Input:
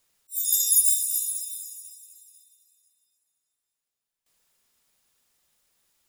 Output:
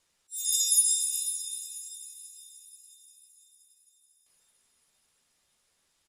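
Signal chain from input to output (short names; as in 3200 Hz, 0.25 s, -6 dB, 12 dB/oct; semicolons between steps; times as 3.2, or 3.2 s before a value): Bessel low-pass 8500 Hz, order 4; doubler 13 ms -7.5 dB; diffused feedback echo 0.5 s, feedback 55%, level -15 dB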